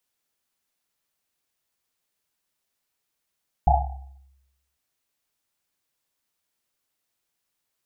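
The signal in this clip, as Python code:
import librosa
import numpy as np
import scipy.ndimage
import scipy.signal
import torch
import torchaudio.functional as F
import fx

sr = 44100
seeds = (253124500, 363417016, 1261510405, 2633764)

y = fx.risset_drum(sr, seeds[0], length_s=1.1, hz=67.0, decay_s=1.0, noise_hz=770.0, noise_width_hz=150.0, noise_pct=50)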